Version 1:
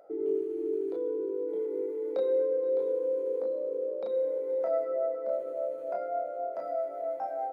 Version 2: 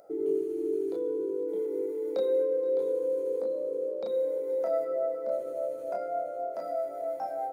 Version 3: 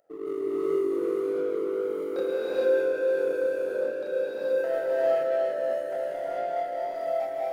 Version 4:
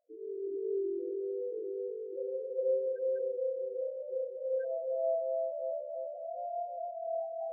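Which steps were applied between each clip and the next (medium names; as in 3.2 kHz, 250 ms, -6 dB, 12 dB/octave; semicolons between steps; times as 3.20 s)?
tone controls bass +8 dB, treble +13 dB
power-law waveshaper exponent 1.4; gated-style reverb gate 470 ms rising, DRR -8 dB; trim -2 dB
loudest bins only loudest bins 4; trim -7 dB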